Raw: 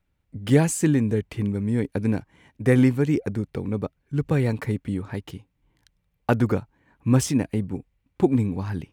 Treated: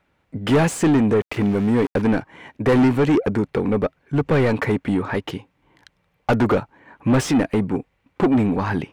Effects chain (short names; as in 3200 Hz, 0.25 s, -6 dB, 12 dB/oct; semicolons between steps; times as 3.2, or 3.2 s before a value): 1.21–2.02 sample gate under -41 dBFS; overdrive pedal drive 29 dB, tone 1300 Hz, clips at -4.5 dBFS; gain -3 dB